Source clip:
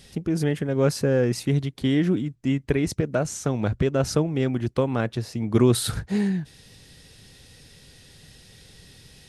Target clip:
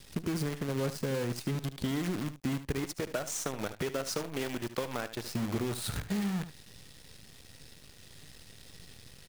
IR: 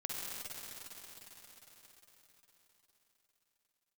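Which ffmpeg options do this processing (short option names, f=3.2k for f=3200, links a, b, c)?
-filter_complex "[0:a]asettb=1/sr,asplit=3[a][b][c];[a]atrim=end=2.844[d];[b]atrim=start=2.84:end=5.27,asetpts=PTS-STARTPTS,afade=t=in:d=0.004:c=qsin,afade=t=out:st=2.426:d=0.004:c=qsin,highpass=f=610:p=1[e];[c]atrim=start=5.266[f];[d][e]acrossfade=d=0.004:c1=hsin:c2=qsin[g];[g][f]acrossfade=d=0.004:c1=qsin:c2=hsin,acompressor=threshold=-30dB:ratio=10,acrusher=bits=7:dc=4:mix=0:aa=0.000001,aecho=1:1:74:0.237"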